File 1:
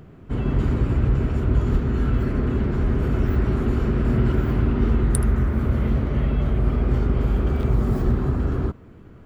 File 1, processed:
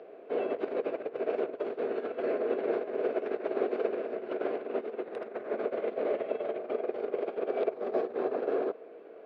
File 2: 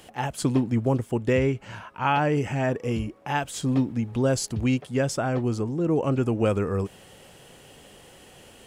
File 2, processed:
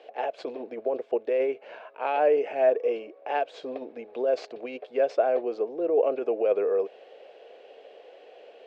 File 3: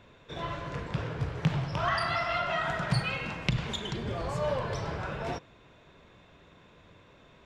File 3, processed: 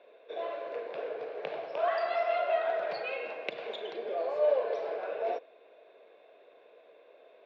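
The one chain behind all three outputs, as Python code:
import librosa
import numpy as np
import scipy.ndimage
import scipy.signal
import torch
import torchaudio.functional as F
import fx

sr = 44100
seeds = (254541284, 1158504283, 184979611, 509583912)

y = fx.tracing_dist(x, sr, depth_ms=0.031)
y = fx.over_compress(y, sr, threshold_db=-22.0, ratio=-0.5)
y = fx.cabinet(y, sr, low_hz=420.0, low_slope=24, high_hz=3400.0, hz=(460.0, 650.0, 940.0, 1300.0, 1900.0, 3100.0), db=(8, 8, -8, -9, -7, -8))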